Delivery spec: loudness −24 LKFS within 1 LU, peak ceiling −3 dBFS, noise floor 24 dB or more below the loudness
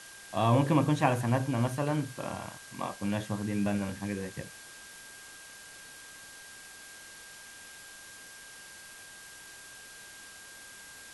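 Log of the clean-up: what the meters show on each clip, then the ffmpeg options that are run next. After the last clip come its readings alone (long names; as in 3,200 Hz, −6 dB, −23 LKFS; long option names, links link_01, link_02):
interfering tone 1,600 Hz; level of the tone −51 dBFS; background noise floor −49 dBFS; target noise floor −55 dBFS; integrated loudness −30.5 LKFS; sample peak −10.5 dBFS; target loudness −24.0 LKFS
→ -af "bandreject=frequency=1600:width=30"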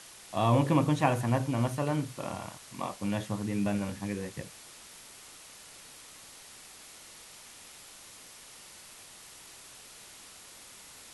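interfering tone none found; background noise floor −51 dBFS; target noise floor −55 dBFS
→ -af "afftdn=noise_reduction=6:noise_floor=-51"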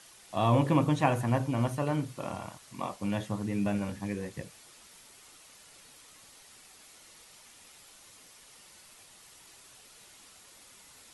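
background noise floor −56 dBFS; integrated loudness −30.5 LKFS; sample peak −11.0 dBFS; target loudness −24.0 LKFS
→ -af "volume=6.5dB"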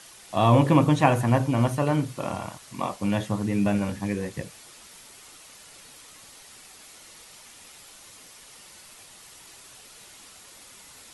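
integrated loudness −24.0 LKFS; sample peak −4.5 dBFS; background noise floor −49 dBFS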